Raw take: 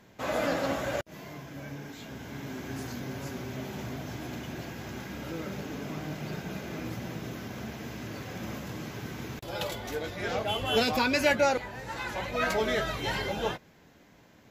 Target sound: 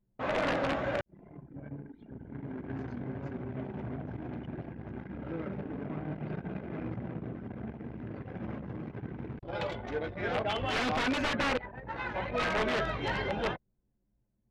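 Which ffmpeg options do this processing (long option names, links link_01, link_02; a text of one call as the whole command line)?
ffmpeg -i in.wav -af "anlmdn=1.58,aeval=exprs='(mod(11.9*val(0)+1,2)-1)/11.9':channel_layout=same,lowpass=2700" out.wav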